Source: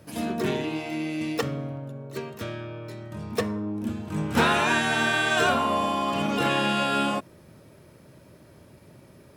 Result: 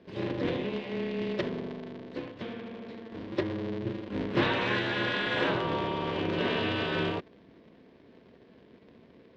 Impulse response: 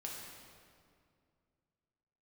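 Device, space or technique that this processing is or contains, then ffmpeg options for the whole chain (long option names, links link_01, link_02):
ring modulator pedal into a guitar cabinet: -af "aeval=exprs='val(0)*sgn(sin(2*PI*110*n/s))':channel_layout=same,highpass=100,equalizer=frequency=180:width_type=q:width=4:gain=3,equalizer=frequency=380:width_type=q:width=4:gain=4,equalizer=frequency=780:width_type=q:width=4:gain=-9,equalizer=frequency=1300:width_type=q:width=4:gain=-9,equalizer=frequency=2500:width_type=q:width=4:gain=-3,lowpass=frequency=3800:width=0.5412,lowpass=frequency=3800:width=1.3066,volume=-3.5dB"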